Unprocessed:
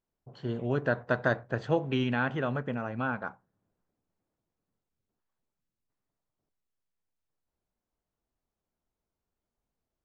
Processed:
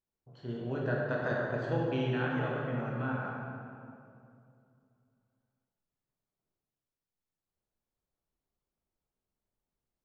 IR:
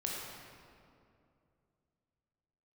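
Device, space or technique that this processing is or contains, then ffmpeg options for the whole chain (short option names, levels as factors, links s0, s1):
stairwell: -filter_complex "[1:a]atrim=start_sample=2205[s0];[0:a][s0]afir=irnorm=-1:irlink=0,volume=0.473"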